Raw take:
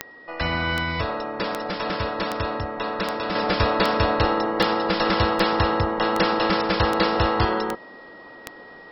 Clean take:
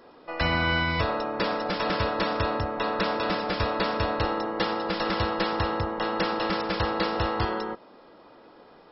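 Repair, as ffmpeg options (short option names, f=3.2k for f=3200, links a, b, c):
-af "adeclick=t=4,bandreject=f=1.9k:w=30,asetnsamples=n=441:p=0,asendcmd='3.35 volume volume -6dB',volume=0dB"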